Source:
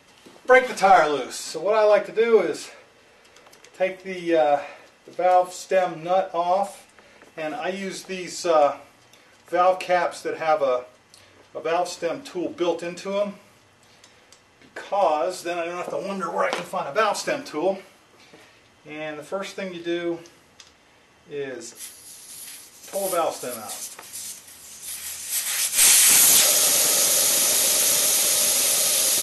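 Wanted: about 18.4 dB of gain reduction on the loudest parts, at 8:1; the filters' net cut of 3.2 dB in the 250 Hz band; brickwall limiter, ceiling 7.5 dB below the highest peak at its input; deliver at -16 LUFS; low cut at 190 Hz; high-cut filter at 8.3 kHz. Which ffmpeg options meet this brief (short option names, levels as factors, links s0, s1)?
-af "highpass=190,lowpass=8300,equalizer=f=250:t=o:g=-4,acompressor=threshold=0.0316:ratio=8,volume=8.91,alimiter=limit=0.531:level=0:latency=1"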